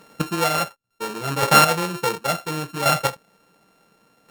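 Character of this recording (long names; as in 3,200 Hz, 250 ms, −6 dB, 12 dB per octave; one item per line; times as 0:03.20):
a buzz of ramps at a fixed pitch in blocks of 32 samples
chopped level 0.7 Hz, depth 65%, duty 15%
Opus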